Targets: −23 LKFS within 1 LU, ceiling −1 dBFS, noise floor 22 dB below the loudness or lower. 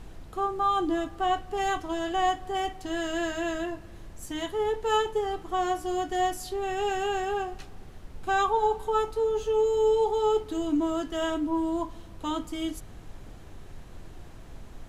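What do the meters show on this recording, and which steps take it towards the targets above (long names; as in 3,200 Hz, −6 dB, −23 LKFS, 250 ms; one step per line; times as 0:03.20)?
background noise floor −46 dBFS; target noise floor −51 dBFS; integrated loudness −28.5 LKFS; sample peak −14.5 dBFS; target loudness −23.0 LKFS
→ noise reduction from a noise print 6 dB
level +5.5 dB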